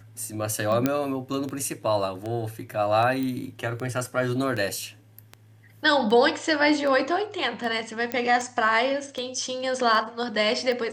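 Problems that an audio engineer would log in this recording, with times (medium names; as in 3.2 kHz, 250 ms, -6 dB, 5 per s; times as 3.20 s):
tick 78 rpm -20 dBFS
0.86 s: pop -8 dBFS
3.23 s: pop
8.12 s: pop -12 dBFS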